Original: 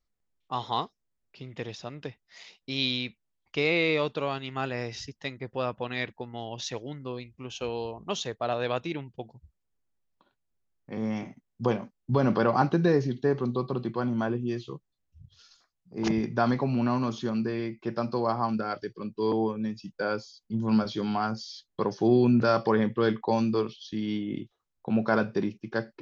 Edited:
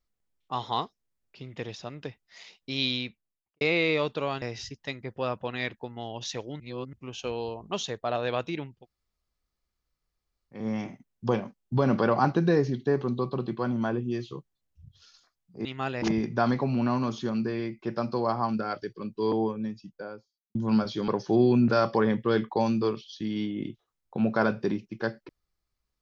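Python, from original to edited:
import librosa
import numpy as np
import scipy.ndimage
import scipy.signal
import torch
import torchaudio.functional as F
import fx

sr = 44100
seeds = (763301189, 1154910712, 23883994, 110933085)

y = fx.studio_fade_out(x, sr, start_s=2.95, length_s=0.66)
y = fx.studio_fade_out(y, sr, start_s=19.35, length_s=1.2)
y = fx.edit(y, sr, fx.move(start_s=4.42, length_s=0.37, to_s=16.02),
    fx.reverse_span(start_s=6.97, length_s=0.33),
    fx.room_tone_fill(start_s=9.12, length_s=1.81, crossfade_s=0.24),
    fx.cut(start_s=21.08, length_s=0.72), tone=tone)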